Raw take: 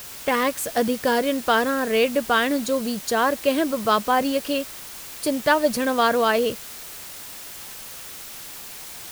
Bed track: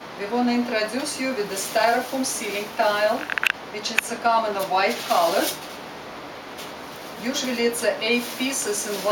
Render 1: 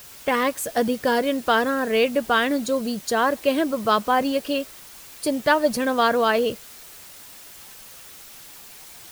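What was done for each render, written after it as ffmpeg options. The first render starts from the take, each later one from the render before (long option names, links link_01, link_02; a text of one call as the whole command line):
ffmpeg -i in.wav -af "afftdn=noise_reduction=6:noise_floor=-38" out.wav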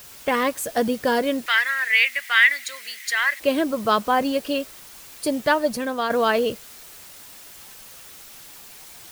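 ffmpeg -i in.wav -filter_complex "[0:a]asettb=1/sr,asplit=3[link_01][link_02][link_03];[link_01]atrim=end=1.464[link_04];[link_02]atrim=start=1.46:end=3.4,asetpts=PTS-STARTPTS,afade=type=in:duration=0.004:curve=qsin,afade=type=out:start_time=1.936:duration=0.004:curve=qsin,highpass=frequency=2000:width_type=q:width=9.4[link_05];[link_03]atrim=start=3.396[link_06];[link_04][link_05]acrossfade=duration=0.004:curve1=hsin:curve2=qsin[link_07];[link_07][link_06]acrossfade=duration=0.004:curve1=qsin:curve2=hsin,asplit=2[link_08][link_09];[link_08]atrim=end=6.1,asetpts=PTS-STARTPTS,afade=type=out:start_time=5.38:duration=0.72:silence=0.473151[link_10];[link_09]atrim=start=6.1,asetpts=PTS-STARTPTS,afade=type=in:duration=0.004:curve=hsin:silence=0.473151[link_11];[link_10][link_11]concat=n=2:v=0:a=1" out.wav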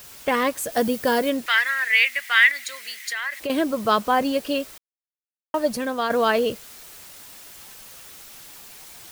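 ffmpeg -i in.wav -filter_complex "[0:a]asettb=1/sr,asplit=3[link_01][link_02][link_03];[link_01]atrim=end=0.724[link_04];[link_02]atrim=start=0.72:end=1.3,asetpts=PTS-STARTPTS,afade=type=in:duration=0.004:curve=qsin,afade=type=out:start_time=0.576:duration=0.004:curve=qsin,highshelf=frequency=10000:gain=8[link_05];[link_03]atrim=start=1.296[link_06];[link_04][link_05]acrossfade=duration=0.004:curve1=hsin:curve2=qsin[link_07];[link_07][link_06]acrossfade=duration=0.004:curve1=qsin:curve2=hsin,asettb=1/sr,asplit=3[link_08][link_09][link_10];[link_08]atrim=end=2.514[link_11];[link_09]atrim=start=2.51:end=3.5,asetpts=PTS-STARTPTS,afade=type=in:duration=0.004:curve=qsin,afade=type=out:start_time=0.986:duration=0.004:curve=qsin,acompressor=threshold=-24dB:ratio=6:attack=3.2:release=140:knee=1:detection=peak[link_12];[link_10]atrim=start=3.496[link_13];[link_11][link_12]acrossfade=duration=0.004:curve1=hsin:curve2=qsin[link_14];[link_14][link_13]acrossfade=duration=0.004:curve1=qsin:curve2=hsin,asplit=3[link_15][link_16][link_17];[link_15]atrim=end=4.78,asetpts=PTS-STARTPTS,afade=type=out:start_time=4.776:duration=0.004:curve=hsin[link_18];[link_16]atrim=start=4.78:end=5.54,asetpts=PTS-STARTPTS,volume=0[link_19];[link_17]atrim=start=5.54,asetpts=PTS-STARTPTS,afade=type=in:duration=0.004:curve=hsin[link_20];[link_18][link_19][link_20]concat=n=3:v=0:a=1" out.wav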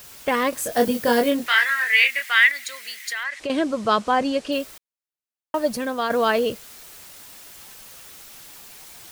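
ffmpeg -i in.wav -filter_complex "[0:a]asettb=1/sr,asplit=3[link_01][link_02][link_03];[link_01]atrim=end=0.504[link_04];[link_02]atrim=start=0.5:end=2.31,asetpts=PTS-STARTPTS,afade=type=in:duration=0.004:curve=qsin,afade=type=out:start_time=1.806:duration=0.004:curve=qsin,asplit=2[link_05][link_06];[link_06]adelay=25,volume=-3.5dB[link_07];[link_05][link_07]amix=inputs=2:normalize=0,atrim=end_sample=79821[link_08];[link_03]atrim=start=2.306[link_09];[link_04][link_08]acrossfade=duration=0.004:curve1=hsin:curve2=qsin[link_10];[link_10][link_09]acrossfade=duration=0.004:curve1=qsin:curve2=hsin,asplit=3[link_11][link_12][link_13];[link_11]afade=type=out:start_time=3.23:duration=0.02[link_14];[link_12]lowpass=frequency=8500:width=0.5412,lowpass=frequency=8500:width=1.3066,afade=type=in:start_time=3.23:duration=0.02,afade=type=out:start_time=4.51:duration=0.02[link_15];[link_13]afade=type=in:start_time=4.51:duration=0.02[link_16];[link_14][link_15][link_16]amix=inputs=3:normalize=0" out.wav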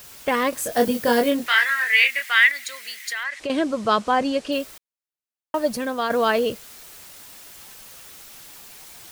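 ffmpeg -i in.wav -af anull out.wav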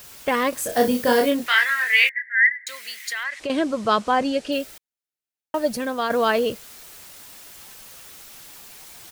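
ffmpeg -i in.wav -filter_complex "[0:a]asplit=3[link_01][link_02][link_03];[link_01]afade=type=out:start_time=0.68:duration=0.02[link_04];[link_02]asplit=2[link_05][link_06];[link_06]adelay=36,volume=-7dB[link_07];[link_05][link_07]amix=inputs=2:normalize=0,afade=type=in:start_time=0.68:duration=0.02,afade=type=out:start_time=1.25:duration=0.02[link_08];[link_03]afade=type=in:start_time=1.25:duration=0.02[link_09];[link_04][link_08][link_09]amix=inputs=3:normalize=0,asettb=1/sr,asplit=3[link_10][link_11][link_12];[link_10]atrim=end=2.094[link_13];[link_11]atrim=start=2.09:end=2.67,asetpts=PTS-STARTPTS,afade=type=in:duration=0.004:curve=qsin,afade=type=out:start_time=0.576:duration=0.004:curve=qsin,asuperpass=centerf=1800:order=8:qfactor=3.8[link_14];[link_12]atrim=start=2.666[link_15];[link_13][link_14]acrossfade=duration=0.004:curve1=hsin:curve2=qsin[link_16];[link_16][link_15]acrossfade=duration=0.004:curve1=qsin:curve2=hsin,asettb=1/sr,asplit=3[link_17][link_18][link_19];[link_17]atrim=end=4.264[link_20];[link_18]atrim=start=4.26:end=5.8,asetpts=PTS-STARTPTS,afade=type=in:duration=0.004:curve=qsin,afade=type=out:start_time=1.536:duration=0.004:curve=qsin,bandreject=frequency=1100:width=5.3[link_21];[link_19]atrim=start=5.796[link_22];[link_20][link_21]acrossfade=duration=0.004:curve1=hsin:curve2=qsin[link_23];[link_23][link_22]acrossfade=duration=0.004:curve1=qsin:curve2=hsin" out.wav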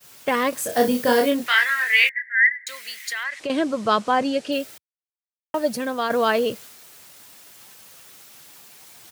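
ffmpeg -i in.wav -af "highpass=frequency=89:width=0.5412,highpass=frequency=89:width=1.3066,agate=range=-33dB:threshold=-39dB:ratio=3:detection=peak" out.wav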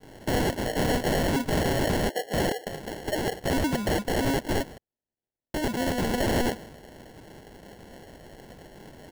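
ffmpeg -i in.wav -af "acrusher=samples=36:mix=1:aa=0.000001,aeval=exprs='(mod(9.44*val(0)+1,2)-1)/9.44':channel_layout=same" out.wav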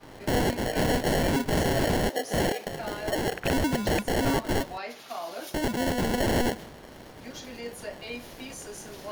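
ffmpeg -i in.wav -i bed.wav -filter_complex "[1:a]volume=-16.5dB[link_01];[0:a][link_01]amix=inputs=2:normalize=0" out.wav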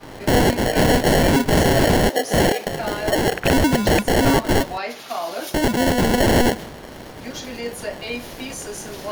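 ffmpeg -i in.wav -af "volume=9dB" out.wav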